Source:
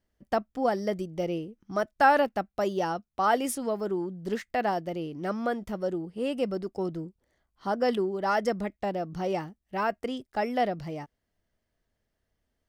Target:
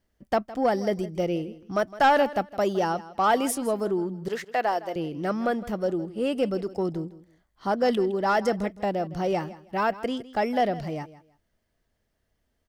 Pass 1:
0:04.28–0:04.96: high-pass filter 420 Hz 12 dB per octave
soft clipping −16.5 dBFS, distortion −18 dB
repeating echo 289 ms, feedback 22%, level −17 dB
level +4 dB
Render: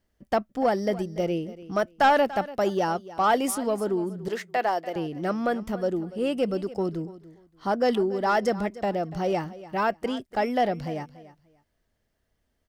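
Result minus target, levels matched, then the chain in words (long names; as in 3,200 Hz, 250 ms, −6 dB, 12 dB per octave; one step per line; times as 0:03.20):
echo 128 ms late
0:04.28–0:04.96: high-pass filter 420 Hz 12 dB per octave
soft clipping −16.5 dBFS, distortion −18 dB
repeating echo 161 ms, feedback 22%, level −17 dB
level +4 dB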